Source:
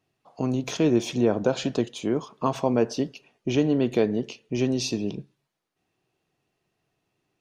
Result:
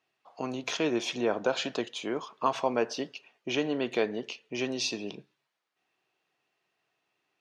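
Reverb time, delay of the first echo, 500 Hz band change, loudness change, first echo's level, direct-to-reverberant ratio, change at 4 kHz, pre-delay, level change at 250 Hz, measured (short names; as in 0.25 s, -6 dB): none, none, -5.5 dB, -5.5 dB, none, none, +0.5 dB, none, -9.5 dB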